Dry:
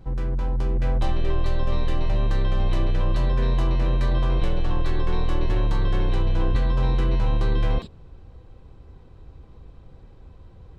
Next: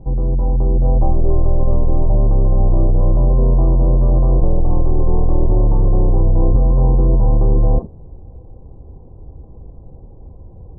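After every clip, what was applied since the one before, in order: steep low-pass 870 Hz 36 dB/oct; gain +8.5 dB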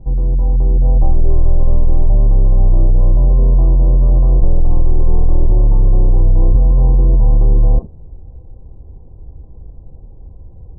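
low shelf 97 Hz +9 dB; gain -4.5 dB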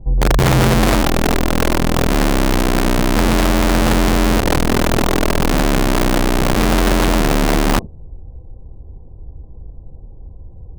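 wrapped overs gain 9.5 dB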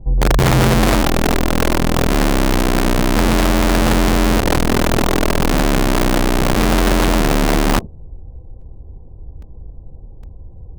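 crackling interface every 0.81 s, samples 128, repeat, from 0.51

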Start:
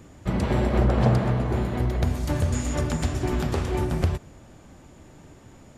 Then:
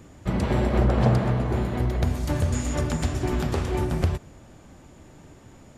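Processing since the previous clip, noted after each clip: nothing audible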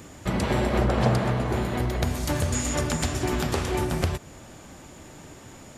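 tilt +1.5 dB/oct; in parallel at 0 dB: compressor, threshold -35 dBFS, peak gain reduction 16 dB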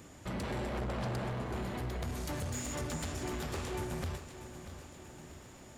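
soft clip -24 dBFS, distortion -10 dB; lo-fi delay 0.637 s, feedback 55%, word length 10-bit, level -12 dB; gain -8.5 dB

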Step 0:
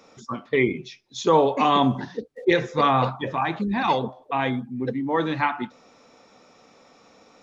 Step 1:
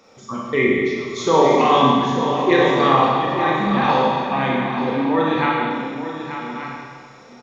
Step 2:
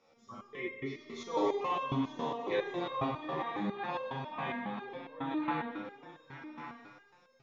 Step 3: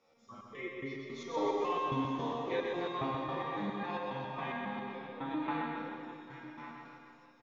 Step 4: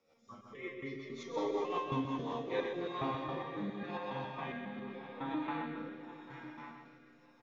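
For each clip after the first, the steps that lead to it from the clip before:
reverse delay 0.67 s, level -10.5 dB; echo 0.885 s -10 dB; Schroeder reverb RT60 1.8 s, combs from 29 ms, DRR -3.5 dB
LPF 5900 Hz 12 dB/oct; stepped resonator 7.3 Hz 78–530 Hz; gain -6.5 dB
reverse bouncing-ball echo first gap 0.13 s, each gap 1.1×, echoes 5; gain -3 dB
rotary speaker horn 5.5 Hz, later 0.9 Hz, at 2.1

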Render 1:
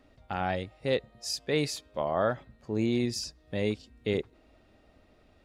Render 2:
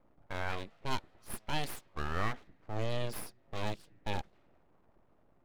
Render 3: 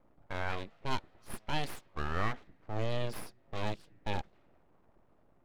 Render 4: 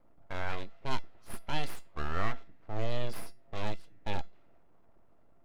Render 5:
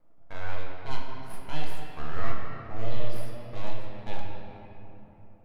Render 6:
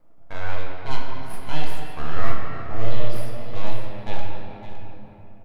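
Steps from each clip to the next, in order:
low-pass opened by the level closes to 840 Hz, open at -27.5 dBFS; full-wave rectifier; gain -4 dB
high shelf 7400 Hz -8 dB; gain +1 dB
resonator 680 Hz, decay 0.24 s, harmonics all, mix 70%; gain +9 dB
shoebox room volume 200 m³, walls hard, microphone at 0.57 m; gain -4 dB
echo 0.561 s -12.5 dB; gain +6 dB

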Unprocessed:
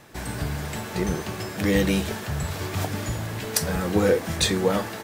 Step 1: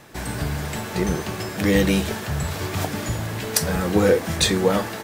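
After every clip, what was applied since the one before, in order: notches 50/100 Hz; gain +3 dB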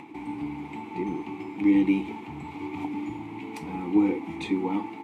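vowel filter u; bell 5200 Hz -6.5 dB 0.67 oct; upward compressor, threshold -41 dBFS; gain +5 dB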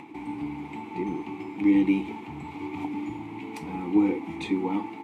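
nothing audible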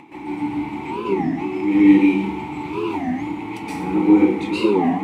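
plate-style reverb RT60 0.66 s, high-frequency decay 0.85×, pre-delay 0.11 s, DRR -9.5 dB; record warp 33 1/3 rpm, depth 250 cents

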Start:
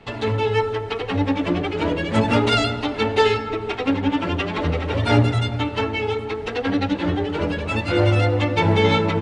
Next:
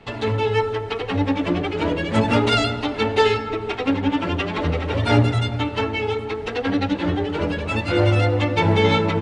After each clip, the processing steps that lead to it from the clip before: nothing audible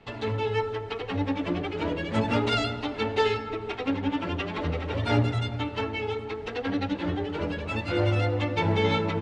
LPF 7800 Hz 12 dB/oct; gain -7 dB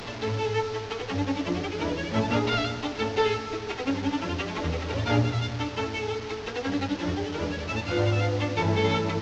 delta modulation 32 kbps, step -32 dBFS

